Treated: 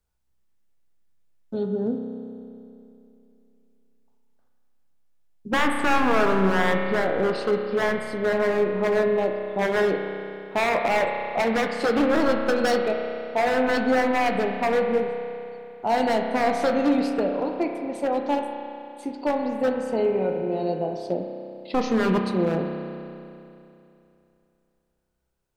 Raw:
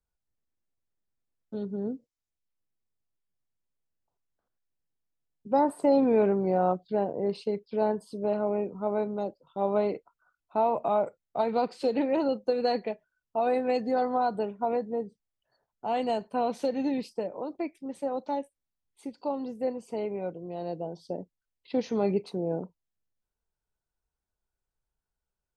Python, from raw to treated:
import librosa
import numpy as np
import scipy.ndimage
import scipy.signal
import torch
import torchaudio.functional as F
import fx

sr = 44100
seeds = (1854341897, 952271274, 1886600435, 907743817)

y = 10.0 ** (-23.5 / 20.0) * (np.abs((x / 10.0 ** (-23.5 / 20.0) + 3.0) % 4.0 - 2.0) - 1.0)
y = fx.doubler(y, sr, ms=17.0, db=-13.5)
y = fx.rev_spring(y, sr, rt60_s=2.8, pass_ms=(31,), chirp_ms=35, drr_db=3.0)
y = y * librosa.db_to_amplitude(7.0)